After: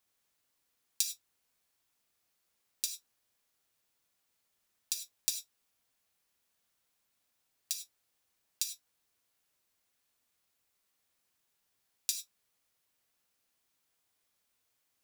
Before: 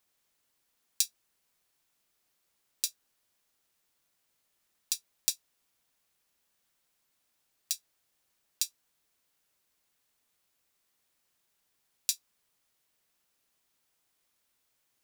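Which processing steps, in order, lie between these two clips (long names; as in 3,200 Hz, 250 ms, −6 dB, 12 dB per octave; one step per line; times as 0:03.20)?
reverb whose tail is shaped and stops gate 120 ms flat, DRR 5.5 dB
level −3.5 dB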